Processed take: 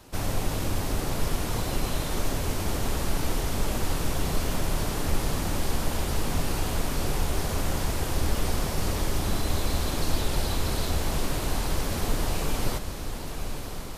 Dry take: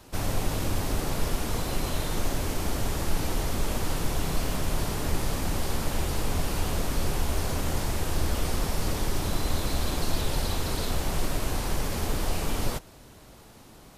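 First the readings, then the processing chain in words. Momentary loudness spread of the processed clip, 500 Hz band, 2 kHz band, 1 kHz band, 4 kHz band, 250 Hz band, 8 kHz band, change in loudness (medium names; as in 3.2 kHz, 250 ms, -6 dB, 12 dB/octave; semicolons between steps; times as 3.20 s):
2 LU, +1.0 dB, +1.0 dB, +1.0 dB, +1.0 dB, +1.0 dB, +1.0 dB, +0.5 dB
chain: on a send: echo that smears into a reverb 1098 ms, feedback 57%, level -8 dB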